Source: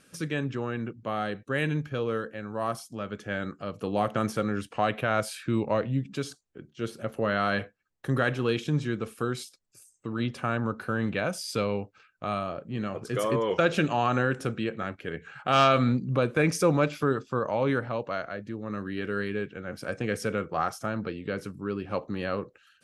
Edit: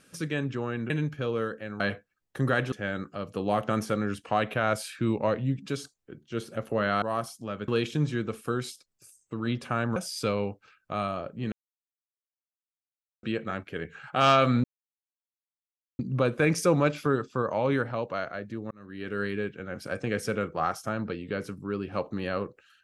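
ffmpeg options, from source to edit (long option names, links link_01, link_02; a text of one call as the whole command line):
ffmpeg -i in.wav -filter_complex "[0:a]asplit=11[link_01][link_02][link_03][link_04][link_05][link_06][link_07][link_08][link_09][link_10][link_11];[link_01]atrim=end=0.902[link_12];[link_02]atrim=start=1.628:end=2.532[link_13];[link_03]atrim=start=7.488:end=8.412[link_14];[link_04]atrim=start=3.188:end=7.492[link_15];[link_05]atrim=start=2.528:end=3.192[link_16];[link_06]atrim=start=8.408:end=10.692[link_17];[link_07]atrim=start=11.278:end=12.84,asetpts=PTS-STARTPTS,afade=type=out:start_time=1.558:duration=0.004:curve=hsin[link_18];[link_08]atrim=start=12.84:end=14.55,asetpts=PTS-STARTPTS,volume=0[link_19];[link_09]atrim=start=14.55:end=15.96,asetpts=PTS-STARTPTS,afade=type=in:duration=0.004:curve=hsin,afade=type=out:start_time=1.406:duration=0.004:curve=hsin,apad=pad_dur=1.35[link_20];[link_10]atrim=start=15.96:end=18.68,asetpts=PTS-STARTPTS,afade=type=in:duration=0.004:curve=hsin,afade=type=out:start_time=2.716:duration=0.004:curve=hsin[link_21];[link_11]atrim=start=18.68,asetpts=PTS-STARTPTS,afade=type=in:duration=0.51[link_22];[link_12][link_13]acrossfade=duration=0.004:curve1=hsin:curve2=hsin[link_23];[link_23][link_14]acrossfade=duration=0.004:curve1=hsin:curve2=hsin[link_24];[link_24][link_15]acrossfade=duration=0.004:curve1=hsin:curve2=hsin[link_25];[link_25][link_16]acrossfade=duration=0.004:curve1=hsin:curve2=hsin[link_26];[link_26][link_17]acrossfade=duration=0.004:curve1=hsin:curve2=hsin[link_27];[link_18][link_19][link_20][link_21][link_22]concat=n=5:v=0:a=1[link_28];[link_27][link_28]acrossfade=duration=0.004:curve1=hsin:curve2=hsin" out.wav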